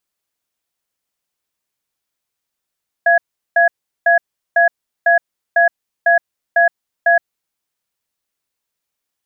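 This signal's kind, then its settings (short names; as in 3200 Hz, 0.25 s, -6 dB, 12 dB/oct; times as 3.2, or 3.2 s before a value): cadence 685 Hz, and 1670 Hz, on 0.12 s, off 0.38 s, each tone -11 dBFS 4.23 s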